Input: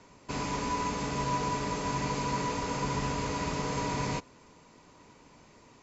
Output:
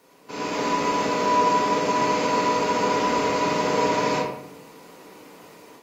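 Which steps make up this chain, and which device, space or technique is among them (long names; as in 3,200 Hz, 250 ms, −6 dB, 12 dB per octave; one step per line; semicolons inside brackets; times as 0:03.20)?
filmed off a television (band-pass filter 240–6,700 Hz; parametric band 450 Hz +6 dB 0.29 octaves; convolution reverb RT60 0.80 s, pre-delay 23 ms, DRR −2 dB; white noise bed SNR 34 dB; automatic gain control gain up to 8.5 dB; level −3.5 dB; AAC 48 kbit/s 48,000 Hz)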